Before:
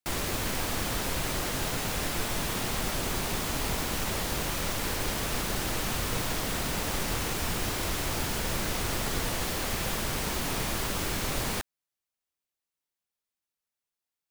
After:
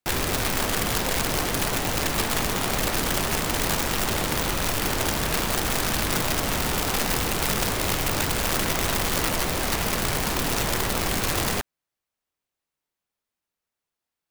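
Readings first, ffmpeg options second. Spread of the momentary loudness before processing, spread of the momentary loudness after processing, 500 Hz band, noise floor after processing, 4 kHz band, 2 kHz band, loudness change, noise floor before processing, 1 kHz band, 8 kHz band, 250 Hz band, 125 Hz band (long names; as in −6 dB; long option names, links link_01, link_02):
0 LU, 1 LU, +6.5 dB, below −85 dBFS, +6.0 dB, +6.5 dB, +6.0 dB, below −85 dBFS, +7.0 dB, +6.0 dB, +5.5 dB, +5.0 dB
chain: -af "highshelf=frequency=2700:gain=-7.5,aeval=exprs='(mod(18.8*val(0)+1,2)-1)/18.8':channel_layout=same,volume=7.5dB"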